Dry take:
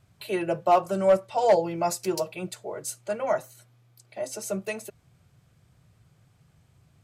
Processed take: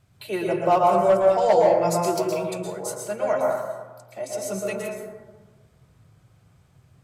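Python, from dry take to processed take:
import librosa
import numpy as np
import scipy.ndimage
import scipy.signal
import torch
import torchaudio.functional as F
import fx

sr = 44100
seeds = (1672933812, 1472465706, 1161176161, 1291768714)

y = fx.rev_plate(x, sr, seeds[0], rt60_s=1.3, hf_ratio=0.3, predelay_ms=105, drr_db=-1.5)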